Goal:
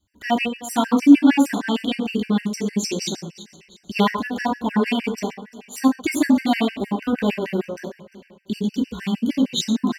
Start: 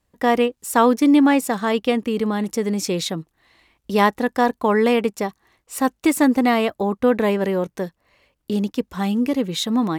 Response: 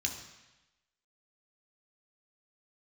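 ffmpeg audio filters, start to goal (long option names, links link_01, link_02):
-filter_complex "[0:a]aecho=1:1:347|694|1041:0.133|0.052|0.0203[link_01];[1:a]atrim=start_sample=2205,atrim=end_sample=6174[link_02];[link_01][link_02]afir=irnorm=-1:irlink=0,afftfilt=real='re*gt(sin(2*PI*6.5*pts/sr)*(1-2*mod(floor(b*sr/1024/1500),2)),0)':imag='im*gt(sin(2*PI*6.5*pts/sr)*(1-2*mod(floor(b*sr/1024/1500),2)),0)':win_size=1024:overlap=0.75,volume=-1.5dB"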